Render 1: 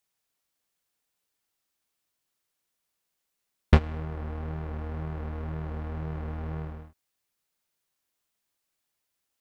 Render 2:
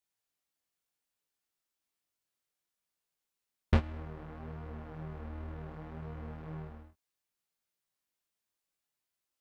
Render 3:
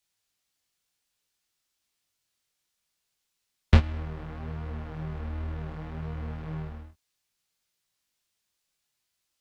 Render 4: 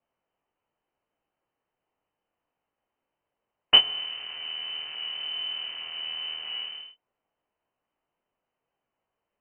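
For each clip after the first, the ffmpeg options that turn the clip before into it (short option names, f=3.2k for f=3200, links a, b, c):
-af "flanger=delay=17:depth=5.4:speed=0.65,volume=-4dB"
-filter_complex "[0:a]equalizer=f=4.6k:w=0.45:g=7.5,acrossover=split=170|1500[a][b][c];[a]acontrast=48[d];[d][b][c]amix=inputs=3:normalize=0,volume=3.5dB"
-af "aexciter=amount=3.1:drive=5.6:freq=2.2k,lowpass=f=2.6k:t=q:w=0.5098,lowpass=f=2.6k:t=q:w=0.6013,lowpass=f=2.6k:t=q:w=0.9,lowpass=f=2.6k:t=q:w=2.563,afreqshift=-3100"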